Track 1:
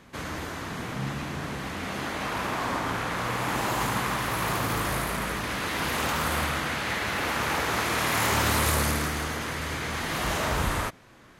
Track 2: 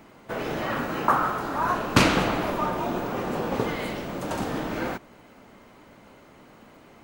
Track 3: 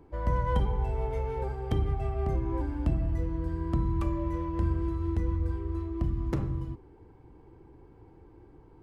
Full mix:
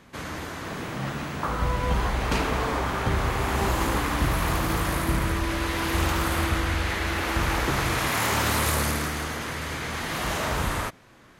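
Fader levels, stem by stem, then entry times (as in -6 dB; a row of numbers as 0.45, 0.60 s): 0.0, -9.5, +1.0 dB; 0.00, 0.35, 1.35 s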